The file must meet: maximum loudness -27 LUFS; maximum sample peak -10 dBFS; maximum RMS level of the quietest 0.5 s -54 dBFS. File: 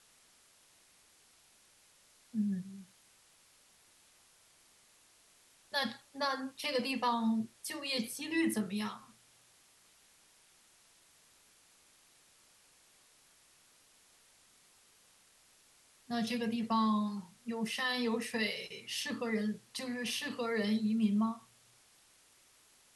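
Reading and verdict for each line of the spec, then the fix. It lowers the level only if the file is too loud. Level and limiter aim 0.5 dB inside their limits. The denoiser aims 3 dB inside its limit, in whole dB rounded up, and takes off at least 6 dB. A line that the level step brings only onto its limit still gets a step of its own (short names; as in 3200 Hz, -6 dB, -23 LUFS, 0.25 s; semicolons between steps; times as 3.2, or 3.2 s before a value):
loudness -35.0 LUFS: OK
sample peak -20.5 dBFS: OK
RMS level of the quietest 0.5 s -66 dBFS: OK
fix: none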